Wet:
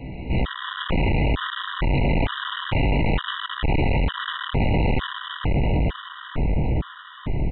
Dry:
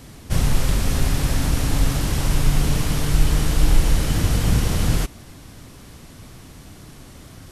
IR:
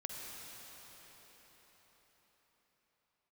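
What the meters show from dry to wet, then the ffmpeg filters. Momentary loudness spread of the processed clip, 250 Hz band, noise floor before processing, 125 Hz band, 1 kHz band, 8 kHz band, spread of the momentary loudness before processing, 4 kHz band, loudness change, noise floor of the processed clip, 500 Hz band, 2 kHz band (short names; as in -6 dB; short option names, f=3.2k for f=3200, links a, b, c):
7 LU, +0.5 dB, -43 dBFS, -2.0 dB, +4.5 dB, under -40 dB, 3 LU, +0.5 dB, -3.0 dB, -41 dBFS, +3.5 dB, +4.0 dB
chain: -filter_complex "[1:a]atrim=start_sample=2205,asetrate=38367,aresample=44100[a];[0:a][a]afir=irnorm=-1:irlink=0,flanger=delay=15.5:depth=6.6:speed=0.29,asplit=2[b][c];[c]adelay=1018,lowpass=f=1.1k:p=1,volume=-8.5dB,asplit=2[d][e];[e]adelay=1018,lowpass=f=1.1k:p=1,volume=0.54,asplit=2[f][g];[g]adelay=1018,lowpass=f=1.1k:p=1,volume=0.54,asplit=2[h][i];[i]adelay=1018,lowpass=f=1.1k:p=1,volume=0.54,asplit=2[j][k];[k]adelay=1018,lowpass=f=1.1k:p=1,volume=0.54,asplit=2[l][m];[m]adelay=1018,lowpass=f=1.1k:p=1,volume=0.54[n];[b][d][f][h][j][l][n]amix=inputs=7:normalize=0,aresample=16000,asoftclip=type=tanh:threshold=-24dB,aresample=44100,acontrast=83,acrossover=split=760|2800[o][p][q];[o]asoftclip=type=hard:threshold=-26dB[r];[r][p][q]amix=inputs=3:normalize=0,aresample=8000,aresample=44100,afftfilt=real='re*gt(sin(2*PI*1.1*pts/sr)*(1-2*mod(floor(b*sr/1024/970),2)),0)':imag='im*gt(sin(2*PI*1.1*pts/sr)*(1-2*mod(floor(b*sr/1024/970),2)),0)':win_size=1024:overlap=0.75,volume=7.5dB"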